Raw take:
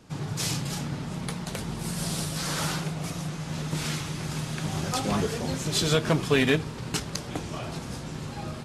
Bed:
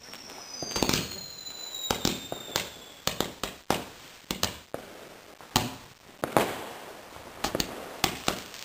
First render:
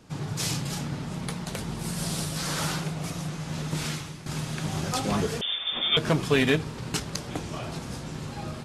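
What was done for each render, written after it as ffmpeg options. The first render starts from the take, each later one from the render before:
ffmpeg -i in.wav -filter_complex "[0:a]asettb=1/sr,asplit=3[link_01][link_02][link_03];[link_01]atrim=end=5.414[link_04];[link_02]atrim=start=5.41:end=5.97,asetpts=PTS-STARTPTS,afade=type=in:duration=0.004:curve=qsin,afade=type=out:start_time=0.556:duration=0.004:curve=qsin,lowpass=frequency=3100:width_type=q:width=0.5098,lowpass=frequency=3100:width_type=q:width=0.6013,lowpass=frequency=3100:width_type=q:width=0.9,lowpass=frequency=3100:width_type=q:width=2.563,afreqshift=-3700[link_05];[link_03]atrim=start=5.966[link_06];[link_04][link_05]acrossfade=duration=0.004:curve1=hsin:curve2=qsin[link_07];[link_07][link_06]acrossfade=duration=0.004:curve1=qsin:curve2=hsin,asplit=2[link_08][link_09];[link_08]atrim=end=4.26,asetpts=PTS-STARTPTS,afade=type=out:start_time=3.83:duration=0.43:silence=0.237137[link_10];[link_09]atrim=start=4.26,asetpts=PTS-STARTPTS,afade=type=in:duration=0.004:curve=hsin:silence=0.237137[link_11];[link_10][link_11]concat=n=2:v=0:a=1" out.wav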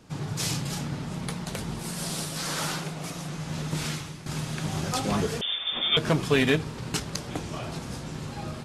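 ffmpeg -i in.wav -filter_complex "[0:a]asettb=1/sr,asplit=3[link_01][link_02][link_03];[link_01]atrim=end=1.794[link_04];[link_02]atrim=start=1.79:end=3.3,asetpts=PTS-STARTPTS,afade=type=in:duration=0.004:curve=qsin,afade=type=out:start_time=1.506:duration=0.004:curve=qsin,equalizer=frequency=70:width=0.81:gain=-11.5[link_05];[link_03]atrim=start=3.296[link_06];[link_04][link_05]acrossfade=duration=0.004:curve1=hsin:curve2=qsin[link_07];[link_07][link_06]acrossfade=duration=0.004:curve1=qsin:curve2=hsin" out.wav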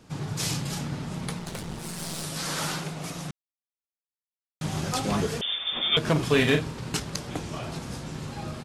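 ffmpeg -i in.wav -filter_complex "[0:a]asettb=1/sr,asplit=3[link_01][link_02][link_03];[link_01]atrim=end=1.394[link_04];[link_02]atrim=start=1.39:end=2.24,asetpts=PTS-STARTPTS,afade=type=in:duration=0.004:curve=qsin,afade=type=out:start_time=0.846:duration=0.004:curve=qsin,aeval=exprs='clip(val(0),-1,0.0119)':channel_layout=same[link_05];[link_03]atrim=start=2.236[link_06];[link_04][link_05]acrossfade=duration=0.004:curve1=hsin:curve2=qsin[link_07];[link_07][link_06]acrossfade=duration=0.004:curve1=qsin:curve2=hsin,asplit=3[link_08][link_09][link_10];[link_08]afade=type=out:start_time=6.15:duration=0.02[link_11];[link_09]asplit=2[link_12][link_13];[link_13]adelay=40,volume=-6dB[link_14];[link_12][link_14]amix=inputs=2:normalize=0,afade=type=in:start_time=6.15:duration=0.02,afade=type=out:start_time=6.72:duration=0.02[link_15];[link_10]afade=type=in:start_time=6.72:duration=0.02[link_16];[link_11][link_15][link_16]amix=inputs=3:normalize=0,asplit=3[link_17][link_18][link_19];[link_17]atrim=end=3.31,asetpts=PTS-STARTPTS,afade=type=out:start_time=3.306:duration=0.004:curve=hsin[link_20];[link_18]atrim=start=3.31:end=4.61,asetpts=PTS-STARTPTS,volume=0[link_21];[link_19]atrim=start=4.61,asetpts=PTS-STARTPTS,afade=type=in:duration=0.004:curve=hsin[link_22];[link_20][link_21][link_22]concat=n=3:v=0:a=1" out.wav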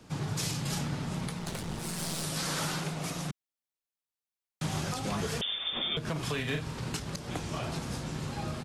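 ffmpeg -i in.wav -filter_complex "[0:a]acrossover=split=190|580[link_01][link_02][link_03];[link_01]acompressor=threshold=-32dB:ratio=4[link_04];[link_02]acompressor=threshold=-39dB:ratio=4[link_05];[link_03]acompressor=threshold=-31dB:ratio=4[link_06];[link_04][link_05][link_06]amix=inputs=3:normalize=0,alimiter=limit=-22dB:level=0:latency=1:release=166" out.wav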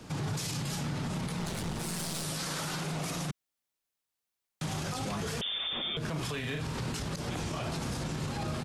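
ffmpeg -i in.wav -af "acontrast=51,alimiter=level_in=2.5dB:limit=-24dB:level=0:latency=1:release=44,volume=-2.5dB" out.wav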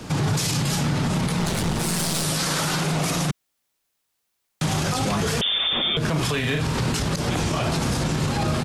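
ffmpeg -i in.wav -af "volume=11.5dB" out.wav

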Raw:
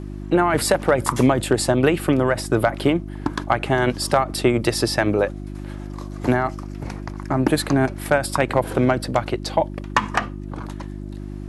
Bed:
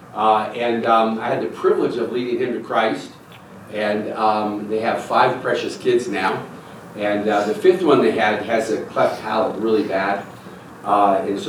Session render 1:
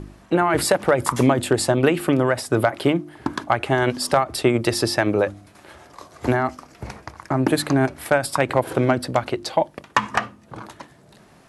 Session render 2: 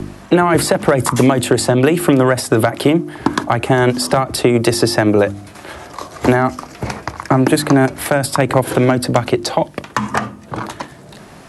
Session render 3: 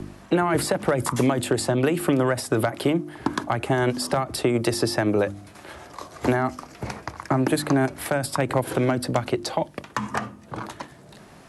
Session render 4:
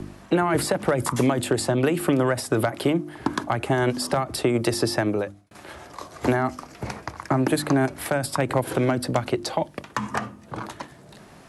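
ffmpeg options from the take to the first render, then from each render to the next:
ffmpeg -i in.wav -af "bandreject=frequency=50:width_type=h:width=4,bandreject=frequency=100:width_type=h:width=4,bandreject=frequency=150:width_type=h:width=4,bandreject=frequency=200:width_type=h:width=4,bandreject=frequency=250:width_type=h:width=4,bandreject=frequency=300:width_type=h:width=4,bandreject=frequency=350:width_type=h:width=4" out.wav
ffmpeg -i in.wav -filter_complex "[0:a]acrossover=split=89|310|1600|5800[link_01][link_02][link_03][link_04][link_05];[link_01]acompressor=threshold=-51dB:ratio=4[link_06];[link_02]acompressor=threshold=-26dB:ratio=4[link_07];[link_03]acompressor=threshold=-26dB:ratio=4[link_08];[link_04]acompressor=threshold=-38dB:ratio=4[link_09];[link_05]acompressor=threshold=-36dB:ratio=4[link_10];[link_06][link_07][link_08][link_09][link_10]amix=inputs=5:normalize=0,alimiter=level_in=12.5dB:limit=-1dB:release=50:level=0:latency=1" out.wav
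ffmpeg -i in.wav -af "volume=-9dB" out.wav
ffmpeg -i in.wav -filter_complex "[0:a]asplit=2[link_01][link_02];[link_01]atrim=end=5.51,asetpts=PTS-STARTPTS,afade=type=out:start_time=4.99:duration=0.52[link_03];[link_02]atrim=start=5.51,asetpts=PTS-STARTPTS,afade=type=in:duration=0.004:curve=hsin[link_04];[link_03][link_04]concat=n=2:v=0:a=1" out.wav

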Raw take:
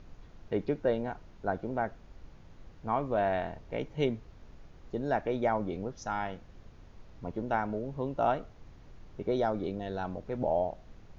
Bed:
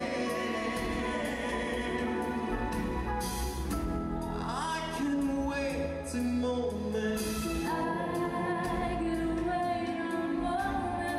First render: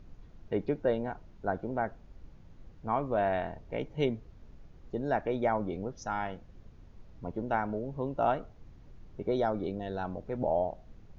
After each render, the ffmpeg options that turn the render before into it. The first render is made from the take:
ffmpeg -i in.wav -af "afftdn=noise_reduction=6:noise_floor=-54" out.wav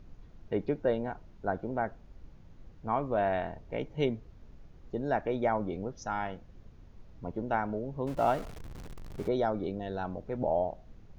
ffmpeg -i in.wav -filter_complex "[0:a]asettb=1/sr,asplit=3[link_01][link_02][link_03];[link_01]atrim=end=8.074[link_04];[link_02]atrim=start=8.07:end=9.28,asetpts=PTS-STARTPTS,afade=type=in:duration=0.004:curve=qsin,afade=type=out:start_time=1.206:duration=0.004:curve=qsin,aeval=exprs='val(0)+0.5*0.01*sgn(val(0))':channel_layout=same[link_05];[link_03]atrim=start=9.276[link_06];[link_04][link_05]acrossfade=duration=0.004:curve1=hsin:curve2=qsin[link_07];[link_07][link_06]acrossfade=duration=0.004:curve1=qsin:curve2=hsin" out.wav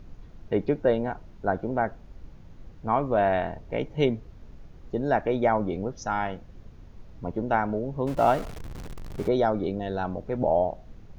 ffmpeg -i in.wav -af "volume=6dB" out.wav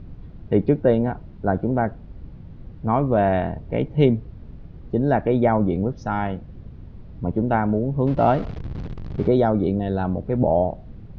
ffmpeg -i in.wav -af "lowpass=frequency=4600:width=0.5412,lowpass=frequency=4600:width=1.3066,equalizer=frequency=120:width=0.33:gain=11" out.wav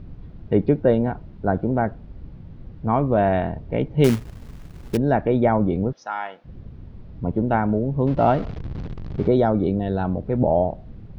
ffmpeg -i in.wav -filter_complex "[0:a]asettb=1/sr,asplit=3[link_01][link_02][link_03];[link_01]atrim=end=4.044[link_04];[link_02]atrim=start=4.04:end=4.97,asetpts=PTS-STARTPTS,afade=type=in:duration=0.004:curve=qsin,afade=type=out:start_time=0.926:duration=0.004:curve=qsin,acrusher=bits=3:mode=log:mix=0:aa=0.000001[link_05];[link_03]atrim=start=4.966[link_06];[link_04][link_05]acrossfade=duration=0.004:curve1=hsin:curve2=qsin[link_07];[link_07][link_06]acrossfade=duration=0.004:curve1=qsin:curve2=hsin,asplit=3[link_08][link_09][link_10];[link_08]afade=type=out:start_time=5.92:duration=0.02[link_11];[link_09]highpass=800,afade=type=in:start_time=5.92:duration=0.02,afade=type=out:start_time=6.44:duration=0.02[link_12];[link_10]afade=type=in:start_time=6.44:duration=0.02[link_13];[link_11][link_12][link_13]amix=inputs=3:normalize=0" out.wav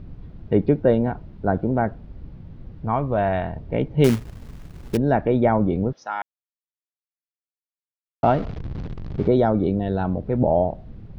ffmpeg -i in.wav -filter_complex "[0:a]asettb=1/sr,asplit=3[link_01][link_02][link_03];[link_01]atrim=end=2.854[link_04];[link_02]atrim=start=2.85:end=3.56,asetpts=PTS-STARTPTS,afade=type=in:duration=0.004:curve=qsin,afade=type=out:start_time=0.706:duration=0.004:curve=qsin,equalizer=frequency=290:width_type=o:width=1.9:gain=-6[link_05];[link_03]atrim=start=3.556[link_06];[link_04][link_05]acrossfade=duration=0.004:curve1=hsin:curve2=qsin[link_07];[link_07][link_06]acrossfade=duration=0.004:curve1=qsin:curve2=hsin,asplit=3[link_08][link_09][link_10];[link_08]atrim=end=6.22,asetpts=PTS-STARTPTS,afade=type=out:start_time=6.216:duration=0.004:curve=hsin[link_11];[link_09]atrim=start=6.22:end=8.23,asetpts=PTS-STARTPTS,volume=0[link_12];[link_10]atrim=start=8.23,asetpts=PTS-STARTPTS,afade=type=in:duration=0.004:curve=hsin[link_13];[link_11][link_12][link_13]concat=n=3:v=0:a=1" out.wav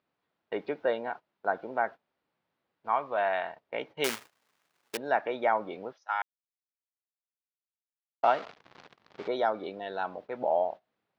ffmpeg -i in.wav -af "agate=range=-18dB:threshold=-29dB:ratio=16:detection=peak,highpass=890" out.wav

